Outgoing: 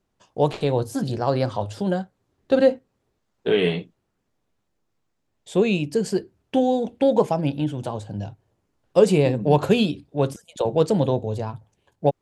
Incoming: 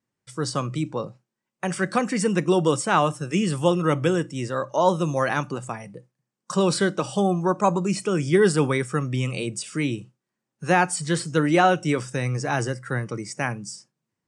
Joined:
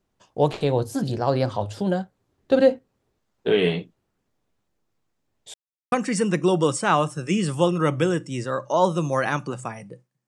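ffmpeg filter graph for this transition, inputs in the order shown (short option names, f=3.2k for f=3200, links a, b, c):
-filter_complex "[0:a]apad=whole_dur=10.27,atrim=end=10.27,asplit=2[a][b];[a]atrim=end=5.54,asetpts=PTS-STARTPTS,afade=t=out:st=5.536:d=0.004:c=hsin[c];[b]atrim=start=5.54:end=5.92,asetpts=PTS-STARTPTS,volume=0[d];[1:a]atrim=start=1.96:end=6.31,asetpts=PTS-STARTPTS,afade=t=in:d=0.004:c=hsin[e];[c][d][e]concat=n=3:v=0:a=1"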